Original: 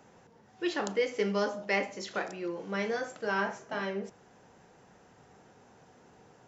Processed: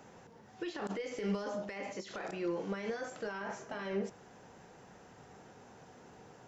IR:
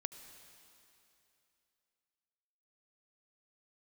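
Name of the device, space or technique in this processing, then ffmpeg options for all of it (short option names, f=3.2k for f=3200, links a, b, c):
de-esser from a sidechain: -filter_complex "[0:a]asplit=2[a][b];[b]highpass=f=6.7k:p=1,apad=whole_len=285584[c];[a][c]sidechaincompress=threshold=-54dB:ratio=20:attack=1.4:release=24,volume=2.5dB"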